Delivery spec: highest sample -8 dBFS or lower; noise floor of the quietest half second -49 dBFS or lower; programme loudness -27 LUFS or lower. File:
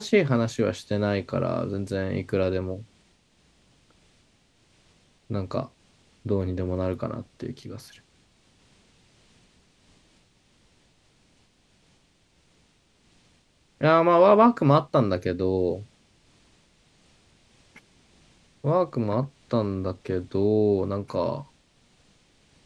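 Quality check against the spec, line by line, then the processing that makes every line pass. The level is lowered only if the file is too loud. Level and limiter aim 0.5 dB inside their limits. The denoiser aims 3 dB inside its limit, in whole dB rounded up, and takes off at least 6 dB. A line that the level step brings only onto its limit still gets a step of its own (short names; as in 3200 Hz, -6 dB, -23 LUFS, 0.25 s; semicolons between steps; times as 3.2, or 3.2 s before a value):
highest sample -4.5 dBFS: fail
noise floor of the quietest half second -63 dBFS: OK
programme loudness -24.5 LUFS: fail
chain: gain -3 dB; limiter -8.5 dBFS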